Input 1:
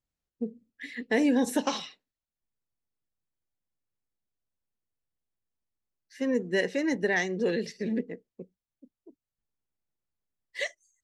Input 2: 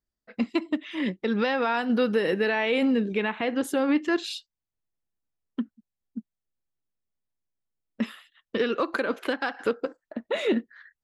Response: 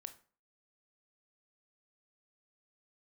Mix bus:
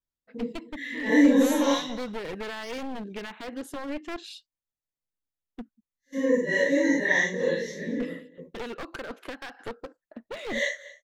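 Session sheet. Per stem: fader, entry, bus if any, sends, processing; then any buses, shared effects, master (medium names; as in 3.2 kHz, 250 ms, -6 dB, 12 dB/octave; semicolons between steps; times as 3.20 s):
+0.5 dB, 0.00 s, no send, echo send -19 dB, phase randomisation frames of 200 ms; rippled EQ curve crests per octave 1.1, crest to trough 14 dB; gate -45 dBFS, range -14 dB
-8.5 dB, 0.00 s, no send, no echo send, one-sided wavefolder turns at -24.5 dBFS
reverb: none
echo: delay 234 ms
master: none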